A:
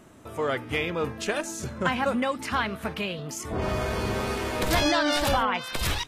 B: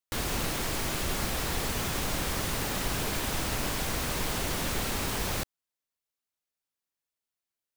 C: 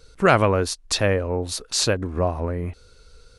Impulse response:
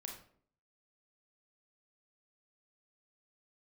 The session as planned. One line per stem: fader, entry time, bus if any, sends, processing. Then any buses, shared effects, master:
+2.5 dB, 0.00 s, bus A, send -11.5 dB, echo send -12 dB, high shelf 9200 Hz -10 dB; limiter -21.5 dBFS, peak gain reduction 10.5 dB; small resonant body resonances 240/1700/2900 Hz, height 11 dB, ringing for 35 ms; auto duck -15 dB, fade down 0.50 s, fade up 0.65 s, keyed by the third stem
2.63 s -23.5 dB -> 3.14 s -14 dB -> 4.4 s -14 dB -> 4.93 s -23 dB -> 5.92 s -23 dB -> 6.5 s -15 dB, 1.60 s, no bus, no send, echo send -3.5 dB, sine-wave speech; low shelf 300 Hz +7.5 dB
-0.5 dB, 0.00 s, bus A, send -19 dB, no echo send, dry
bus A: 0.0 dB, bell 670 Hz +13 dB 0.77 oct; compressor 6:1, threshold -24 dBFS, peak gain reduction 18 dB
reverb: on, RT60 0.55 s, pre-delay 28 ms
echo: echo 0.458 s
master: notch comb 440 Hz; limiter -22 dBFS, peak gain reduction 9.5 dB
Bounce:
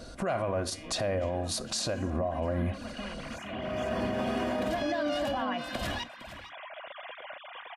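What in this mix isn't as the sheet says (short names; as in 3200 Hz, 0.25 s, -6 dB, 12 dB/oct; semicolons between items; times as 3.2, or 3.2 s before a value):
stem A +2.5 dB -> -5.5 dB; stem B: entry 1.60 s -> 2.45 s; stem C -0.5 dB -> +5.5 dB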